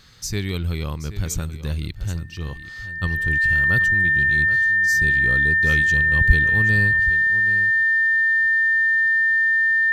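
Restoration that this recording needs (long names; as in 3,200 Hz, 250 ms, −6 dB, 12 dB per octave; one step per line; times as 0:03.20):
notch filter 1,800 Hz, Q 30
echo removal 778 ms −13.5 dB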